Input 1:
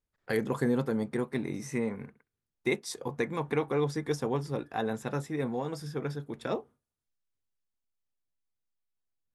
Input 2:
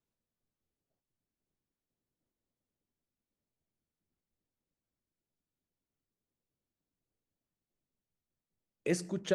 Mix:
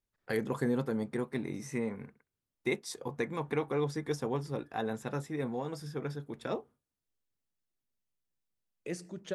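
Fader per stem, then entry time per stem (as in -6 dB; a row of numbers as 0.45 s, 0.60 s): -3.0 dB, -7.0 dB; 0.00 s, 0.00 s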